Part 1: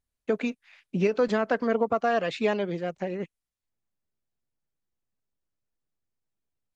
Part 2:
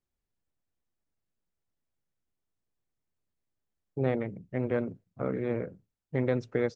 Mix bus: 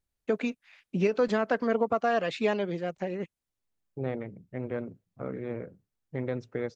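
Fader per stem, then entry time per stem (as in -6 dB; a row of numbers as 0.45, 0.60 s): -1.5, -4.5 dB; 0.00, 0.00 s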